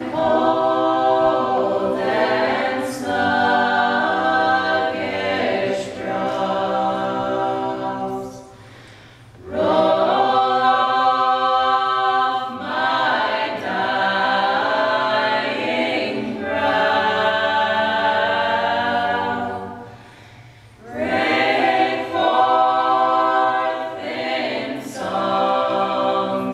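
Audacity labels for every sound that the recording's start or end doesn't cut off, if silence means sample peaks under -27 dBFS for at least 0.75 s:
9.480000	19.830000	sound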